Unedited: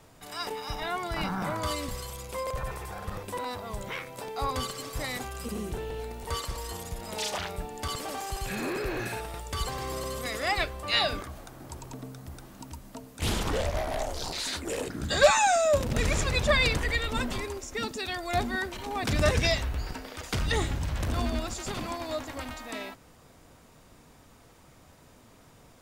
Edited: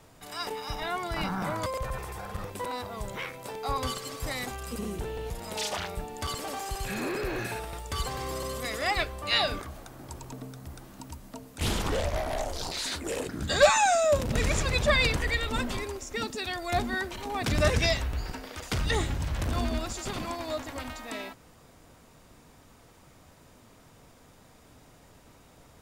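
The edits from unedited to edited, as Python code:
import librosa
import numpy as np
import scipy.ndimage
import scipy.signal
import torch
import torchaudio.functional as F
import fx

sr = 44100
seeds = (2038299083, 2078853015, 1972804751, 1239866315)

y = fx.edit(x, sr, fx.cut(start_s=1.66, length_s=0.73),
    fx.cut(start_s=6.03, length_s=0.88), tone=tone)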